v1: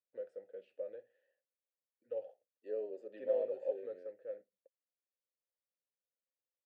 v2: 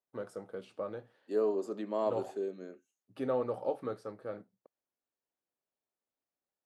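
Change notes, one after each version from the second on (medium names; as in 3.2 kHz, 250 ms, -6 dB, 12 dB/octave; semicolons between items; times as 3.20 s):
second voice: entry -1.35 s; master: remove vowel filter e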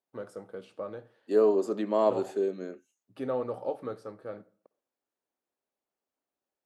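second voice +7.5 dB; reverb: on, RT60 0.50 s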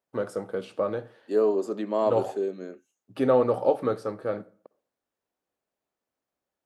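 first voice +10.5 dB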